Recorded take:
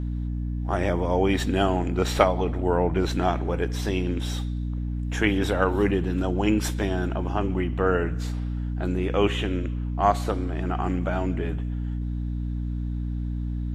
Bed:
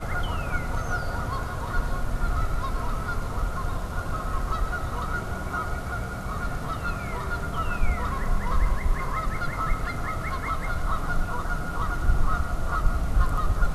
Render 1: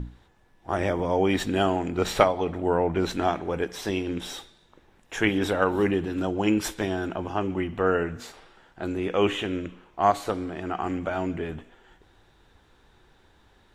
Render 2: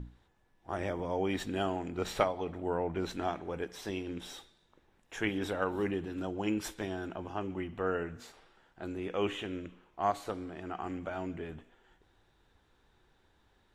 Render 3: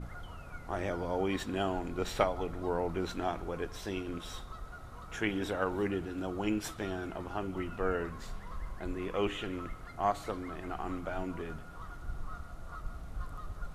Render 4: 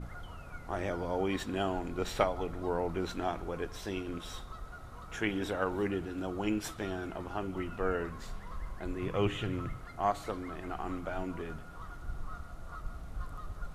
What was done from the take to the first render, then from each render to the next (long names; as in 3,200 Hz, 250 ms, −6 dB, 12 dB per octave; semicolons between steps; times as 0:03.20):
mains-hum notches 60/120/180/240/300 Hz
level −9.5 dB
mix in bed −18 dB
0:09.02–0:09.79: parametric band 120 Hz +15 dB